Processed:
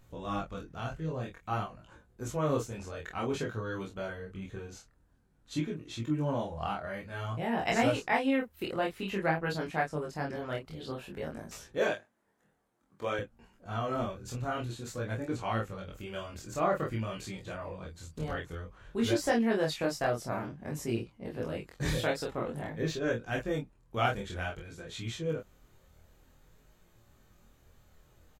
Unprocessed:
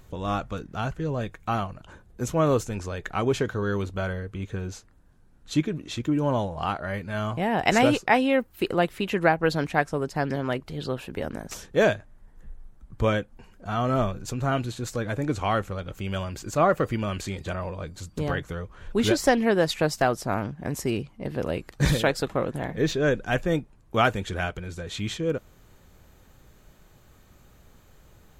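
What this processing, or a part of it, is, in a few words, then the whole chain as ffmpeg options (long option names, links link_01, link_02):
double-tracked vocal: -filter_complex "[0:a]asplit=2[link_01][link_02];[link_02]adelay=26,volume=-2.5dB[link_03];[link_01][link_03]amix=inputs=2:normalize=0,flanger=delay=17:depth=7.6:speed=0.52,asettb=1/sr,asplit=3[link_04][link_05][link_06];[link_04]atrim=end=11.784[link_07];[link_05]atrim=start=11.78:end=13.19,asetpts=PTS-STARTPTS,afade=type=in:duration=0.004:curve=qsin,afade=type=out:start_time=1.406:duration=0.004:curve=qsin,highpass=280[link_08];[link_06]atrim=start=13.186[link_09];[link_07][link_08]acrossfade=duration=0.004:curve1=hsin:curve2=qsin[link_10];[link_10][link_09]acrossfade=duration=0.004:curve1=qsin:curve2=hsin,volume=-6.5dB"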